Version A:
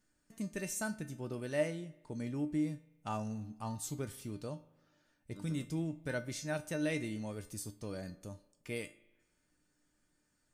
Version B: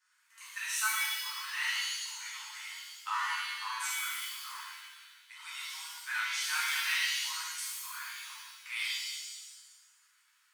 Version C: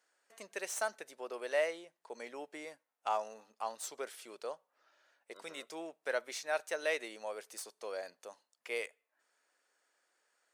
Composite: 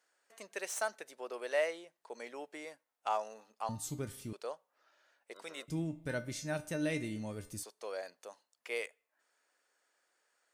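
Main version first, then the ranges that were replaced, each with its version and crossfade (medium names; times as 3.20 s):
C
3.69–4.33 s: from A
5.68–7.63 s: from A
not used: B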